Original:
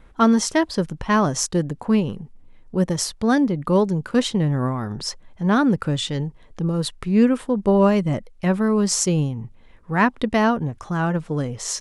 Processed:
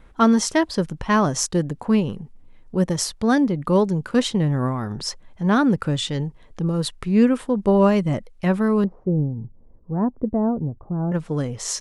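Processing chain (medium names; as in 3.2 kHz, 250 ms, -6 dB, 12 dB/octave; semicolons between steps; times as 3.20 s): 8.84–11.12 s: Bessel low-pass 510 Hz, order 4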